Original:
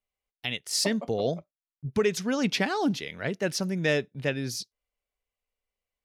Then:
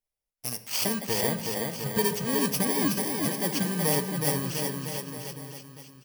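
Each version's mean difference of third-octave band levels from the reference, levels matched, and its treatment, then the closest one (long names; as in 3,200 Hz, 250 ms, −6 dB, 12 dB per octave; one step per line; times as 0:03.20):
14.5 dB: samples in bit-reversed order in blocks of 32 samples
bouncing-ball delay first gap 370 ms, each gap 0.9×, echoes 5
rectangular room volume 1,700 cubic metres, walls mixed, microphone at 0.56 metres
level −1.5 dB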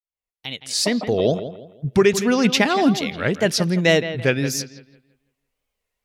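5.0 dB: fade in at the beginning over 1.29 s
tape wow and flutter 150 cents
bucket-brigade delay 166 ms, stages 4,096, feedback 33%, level −12 dB
level +9 dB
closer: second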